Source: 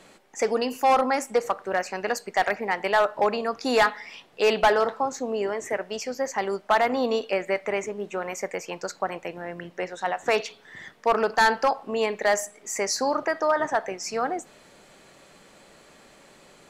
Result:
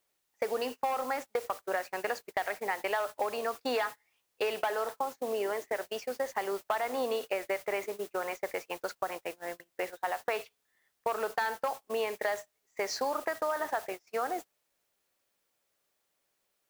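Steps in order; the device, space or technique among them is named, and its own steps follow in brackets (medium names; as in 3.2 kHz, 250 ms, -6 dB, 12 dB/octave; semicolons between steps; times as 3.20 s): baby monitor (band-pass 370–3900 Hz; compression 12:1, threshold -26 dBFS, peak gain reduction 12 dB; white noise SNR 15 dB; gate -35 dBFS, range -30 dB); trim -1.5 dB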